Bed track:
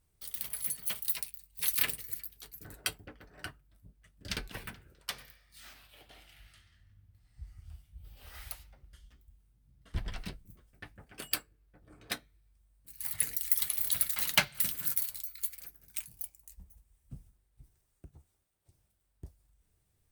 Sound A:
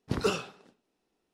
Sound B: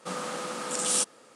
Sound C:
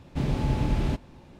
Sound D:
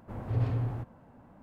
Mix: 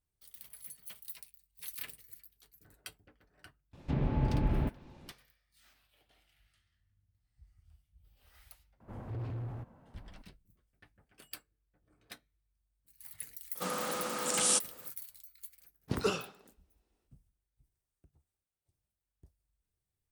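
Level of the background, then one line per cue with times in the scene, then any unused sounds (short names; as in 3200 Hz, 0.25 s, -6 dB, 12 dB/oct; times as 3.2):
bed track -13.5 dB
3.73 add C -4.5 dB + treble ducked by the level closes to 2100 Hz, closed at -24 dBFS
8.8 add D -4.5 dB + soft clip -30.5 dBFS
13.55 add B -2 dB
15.8 add A -3.5 dB, fades 0.10 s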